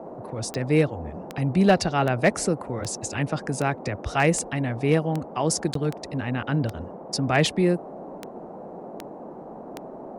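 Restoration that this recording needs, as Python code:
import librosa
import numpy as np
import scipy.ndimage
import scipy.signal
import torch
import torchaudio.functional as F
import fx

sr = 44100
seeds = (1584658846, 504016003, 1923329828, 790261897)

y = fx.fix_declip(x, sr, threshold_db=-10.0)
y = fx.fix_declick_ar(y, sr, threshold=10.0)
y = fx.fix_interpolate(y, sr, at_s=(5.74,), length_ms=13.0)
y = fx.noise_reduce(y, sr, print_start_s=9.17, print_end_s=9.67, reduce_db=29.0)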